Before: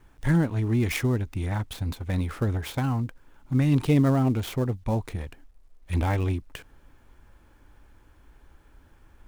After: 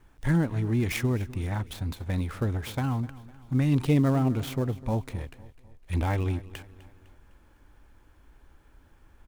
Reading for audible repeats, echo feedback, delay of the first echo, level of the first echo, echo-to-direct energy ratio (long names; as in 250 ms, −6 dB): 3, 47%, 253 ms, −18.5 dB, −17.5 dB